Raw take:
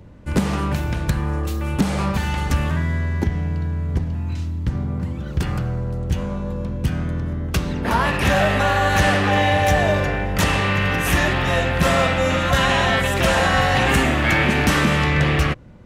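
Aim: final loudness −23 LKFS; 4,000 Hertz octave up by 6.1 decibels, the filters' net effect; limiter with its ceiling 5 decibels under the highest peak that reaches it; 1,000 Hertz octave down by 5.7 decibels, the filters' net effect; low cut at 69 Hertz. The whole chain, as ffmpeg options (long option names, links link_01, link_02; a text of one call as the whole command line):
ffmpeg -i in.wav -af "highpass=69,equalizer=frequency=1000:width_type=o:gain=-8.5,equalizer=frequency=4000:width_type=o:gain=9,volume=-2dB,alimiter=limit=-11.5dB:level=0:latency=1" out.wav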